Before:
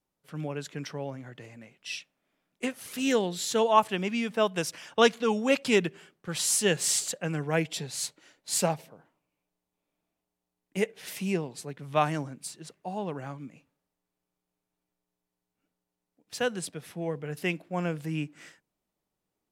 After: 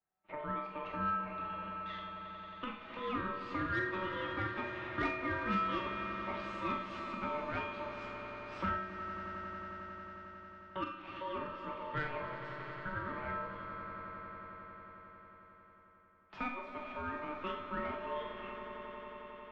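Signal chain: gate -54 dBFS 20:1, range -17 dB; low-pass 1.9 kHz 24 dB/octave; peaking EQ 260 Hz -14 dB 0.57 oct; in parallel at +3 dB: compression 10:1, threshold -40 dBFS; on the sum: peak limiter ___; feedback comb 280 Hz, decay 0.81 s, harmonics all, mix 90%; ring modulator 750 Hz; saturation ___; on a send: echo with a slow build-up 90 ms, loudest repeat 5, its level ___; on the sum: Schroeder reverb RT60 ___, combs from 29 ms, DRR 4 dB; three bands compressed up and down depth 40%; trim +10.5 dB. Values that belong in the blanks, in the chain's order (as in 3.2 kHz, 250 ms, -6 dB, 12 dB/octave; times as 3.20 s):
-11 dBFS, -35.5 dBFS, -15 dB, 0.35 s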